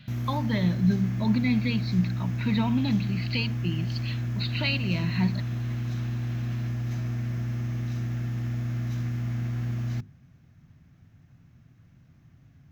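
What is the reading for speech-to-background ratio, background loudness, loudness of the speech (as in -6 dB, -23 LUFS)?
2.5 dB, -30.5 LUFS, -28.0 LUFS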